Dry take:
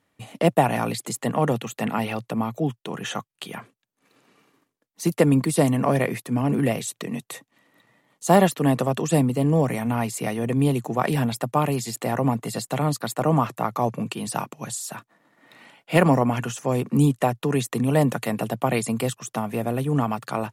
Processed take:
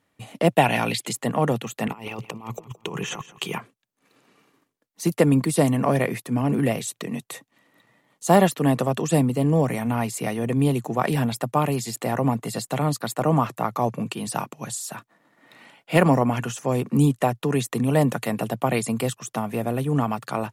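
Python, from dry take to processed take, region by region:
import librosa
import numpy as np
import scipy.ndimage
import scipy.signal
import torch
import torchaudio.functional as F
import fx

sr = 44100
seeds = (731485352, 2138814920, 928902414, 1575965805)

y = fx.chain(x, sr, fx.peak_eq(hz=2900.0, db=10.0, octaves=1.3),
    fx.notch(hz=1200.0, q=10.0), at=(0.53, 1.13))
y = fx.chain(y, sr, fx.ripple_eq(per_octave=0.74, db=8),
    fx.over_compress(threshold_db=-32.0, ratio=-0.5),
    fx.echo_feedback(ms=169, feedback_pct=33, wet_db=-17), at=(1.88, 3.58))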